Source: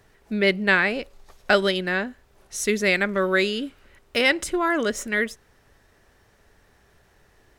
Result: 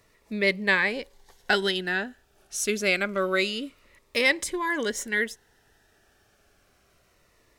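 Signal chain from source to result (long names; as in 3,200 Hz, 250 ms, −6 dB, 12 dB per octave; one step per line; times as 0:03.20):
low-shelf EQ 310 Hz −8 dB
phaser whose notches keep moving one way falling 0.27 Hz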